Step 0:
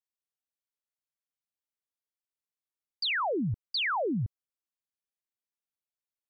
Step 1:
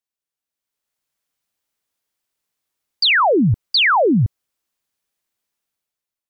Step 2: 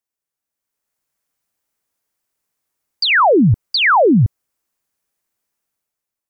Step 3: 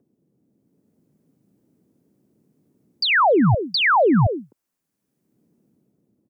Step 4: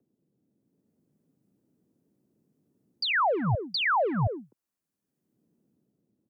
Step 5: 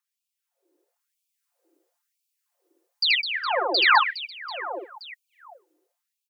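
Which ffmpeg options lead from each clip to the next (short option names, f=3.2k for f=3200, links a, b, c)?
-af "dynaudnorm=f=300:g=5:m=11.5dB,volume=3.5dB"
-af "equalizer=f=3.5k:w=1.3:g=-6,volume=3.5dB"
-filter_complex "[0:a]acrossover=split=140|300|1400[a][b][c][d];[b]acompressor=mode=upward:threshold=-28dB:ratio=2.5[e];[c]aecho=1:1:258:0.447[f];[a][e][f][d]amix=inputs=4:normalize=0,volume=-4.5dB"
-filter_complex "[0:a]bandreject=f=2.2k:w=21,acrossover=split=170|450|2200[a][b][c][d];[b]asoftclip=type=tanh:threshold=-28dB[e];[a][e][c][d]amix=inputs=4:normalize=0,volume=-8dB"
-af "aecho=1:1:5.7:0.65,aecho=1:1:80|208|412.8|740.5|1265:0.631|0.398|0.251|0.158|0.1,afftfilt=real='re*gte(b*sr/1024,290*pow(2300/290,0.5+0.5*sin(2*PI*1*pts/sr)))':imag='im*gte(b*sr/1024,290*pow(2300/290,0.5+0.5*sin(2*PI*1*pts/sr)))':win_size=1024:overlap=0.75,volume=5.5dB"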